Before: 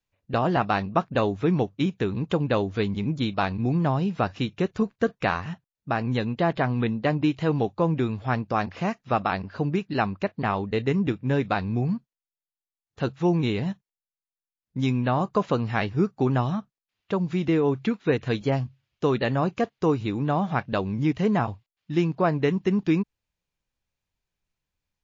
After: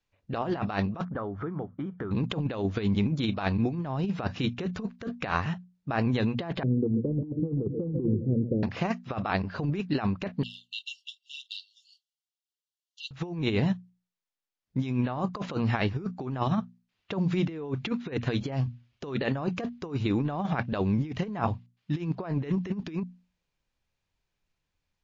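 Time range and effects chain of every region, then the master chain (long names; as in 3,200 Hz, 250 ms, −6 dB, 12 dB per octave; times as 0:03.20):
0:01.05–0:02.11: parametric band 1,300 Hz +9.5 dB 0.4 octaves + downward compressor, threshold −34 dBFS + Savitzky-Golay smoothing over 41 samples
0:06.63–0:08.63: Butterworth low-pass 510 Hz 72 dB per octave + repeating echo 134 ms, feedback 49%, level −13.5 dB
0:10.43–0:13.11: phase shifter 1 Hz, delay 4.4 ms, feedback 45% + linear-phase brick-wall high-pass 2,700 Hz
whole clip: low-pass filter 6,500 Hz 12 dB per octave; mains-hum notches 60/120/180/240 Hz; compressor whose output falls as the input rises −27 dBFS, ratio −0.5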